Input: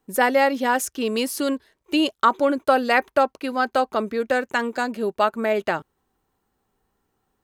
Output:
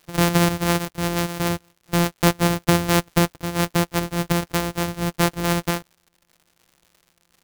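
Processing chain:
samples sorted by size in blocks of 256 samples
high-shelf EQ 8,900 Hz +4.5 dB
surface crackle 140 per second −42 dBFS

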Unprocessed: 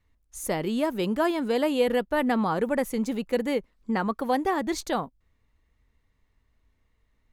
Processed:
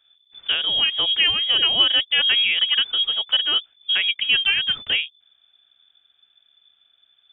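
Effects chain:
voice inversion scrambler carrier 3,500 Hz
level +5.5 dB

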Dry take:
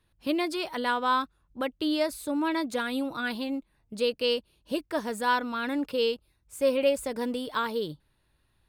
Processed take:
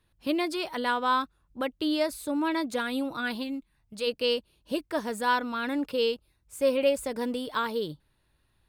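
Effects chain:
0:03.42–0:04.06: parametric band 860 Hz → 280 Hz −10.5 dB 1.4 octaves

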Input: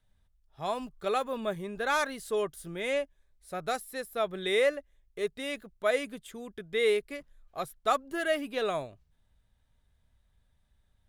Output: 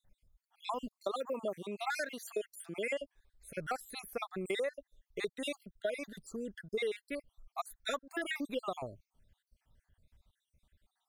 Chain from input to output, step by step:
time-frequency cells dropped at random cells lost 59%
0:00.99–0:02.99: high-pass filter 240 Hz 12 dB per octave
downward compressor 8 to 1, threshold −35 dBFS, peak gain reduction 13.5 dB
level +2.5 dB

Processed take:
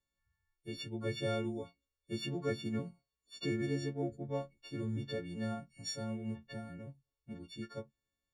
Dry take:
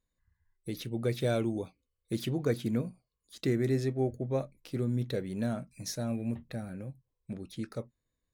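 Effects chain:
every partial snapped to a pitch grid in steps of 4 semitones
high-frequency loss of the air 110 metres
level −6 dB

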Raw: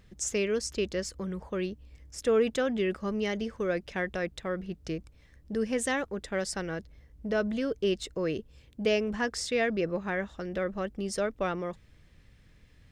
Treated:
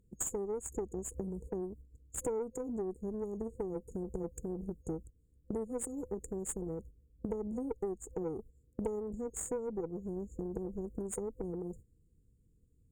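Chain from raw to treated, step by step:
dynamic equaliser 210 Hz, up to −5 dB, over −45 dBFS, Q 0.87
noise gate −47 dBFS, range −15 dB
brick-wall band-stop 510–6,600 Hz
downward compressor 5 to 1, threshold −43 dBFS, peak gain reduction 17.5 dB
harmonic generator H 2 −9 dB, 7 −29 dB, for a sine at −31.5 dBFS
level +7.5 dB

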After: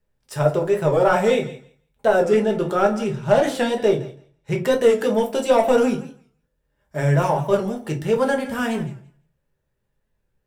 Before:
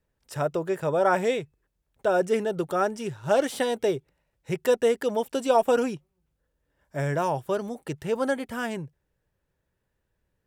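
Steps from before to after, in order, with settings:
0:02.24–0:04.71: high-shelf EQ 8,800 Hz −9.5 dB
leveller curve on the samples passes 1
feedback echo with a high-pass in the loop 167 ms, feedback 15%, high-pass 420 Hz, level −16 dB
convolution reverb RT60 0.30 s, pre-delay 5 ms, DRR 1 dB
wow of a warped record 45 rpm, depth 100 cents

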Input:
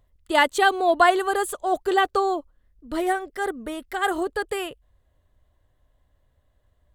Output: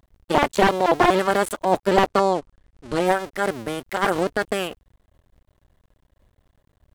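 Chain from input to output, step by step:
sub-harmonics by changed cycles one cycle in 2, muted
0:02.06–0:03.06: low-pass filter 10,000 Hz 24 dB per octave
slew-rate limiting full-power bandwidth 140 Hz
level +6.5 dB

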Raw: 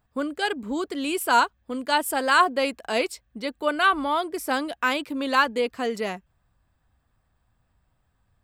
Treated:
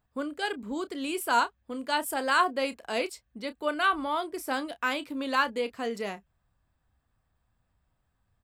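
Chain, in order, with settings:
double-tracking delay 30 ms −13.5 dB
level −5.5 dB

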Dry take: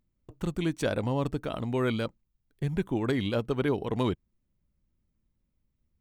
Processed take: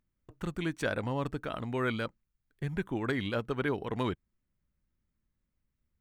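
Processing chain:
parametric band 1,600 Hz +8 dB 1.2 octaves
level −5 dB

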